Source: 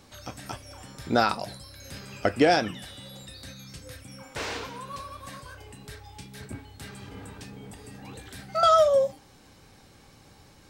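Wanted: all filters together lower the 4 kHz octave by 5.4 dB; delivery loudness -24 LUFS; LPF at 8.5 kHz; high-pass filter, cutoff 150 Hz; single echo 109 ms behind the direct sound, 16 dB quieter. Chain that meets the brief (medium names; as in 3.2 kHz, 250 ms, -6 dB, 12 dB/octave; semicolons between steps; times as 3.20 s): high-pass 150 Hz; low-pass 8.5 kHz; peaking EQ 4 kHz -7 dB; delay 109 ms -16 dB; trim +1 dB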